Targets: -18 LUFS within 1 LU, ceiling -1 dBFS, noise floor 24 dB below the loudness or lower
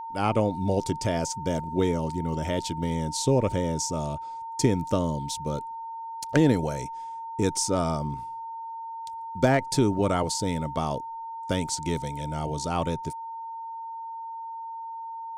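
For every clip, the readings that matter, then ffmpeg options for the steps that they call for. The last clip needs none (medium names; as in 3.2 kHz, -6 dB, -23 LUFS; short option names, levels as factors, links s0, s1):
steady tone 910 Hz; tone level -34 dBFS; loudness -28.5 LUFS; peak level -9.5 dBFS; loudness target -18.0 LUFS
-> -af "bandreject=f=910:w=30"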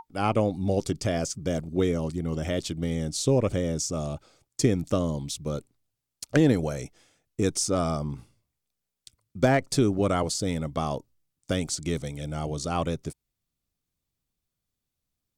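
steady tone not found; loudness -27.5 LUFS; peak level -9.5 dBFS; loudness target -18.0 LUFS
-> -af "volume=2.99,alimiter=limit=0.891:level=0:latency=1"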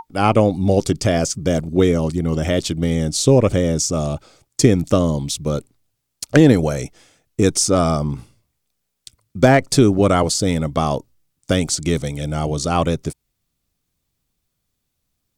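loudness -18.0 LUFS; peak level -1.0 dBFS; noise floor -75 dBFS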